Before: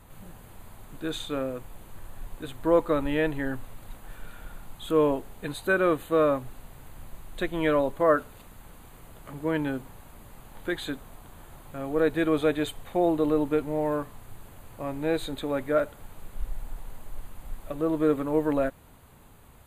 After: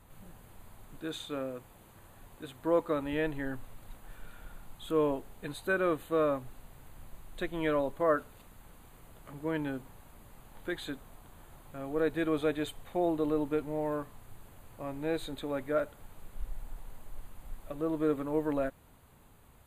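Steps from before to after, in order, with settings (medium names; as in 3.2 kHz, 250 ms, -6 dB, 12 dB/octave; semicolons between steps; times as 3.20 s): 1.00–3.13 s: high-pass 90 Hz 6 dB/octave; trim -6 dB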